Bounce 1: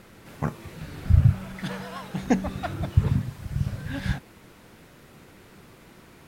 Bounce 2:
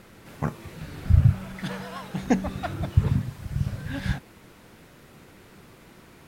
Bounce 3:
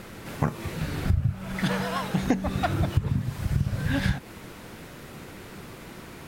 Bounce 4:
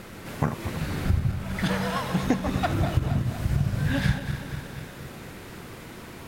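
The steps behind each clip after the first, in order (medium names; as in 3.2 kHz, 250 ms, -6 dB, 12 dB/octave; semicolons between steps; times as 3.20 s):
no audible change
compression 10:1, threshold -28 dBFS, peak gain reduction 17.5 dB; trim +8 dB
backward echo that repeats 120 ms, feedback 79%, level -10 dB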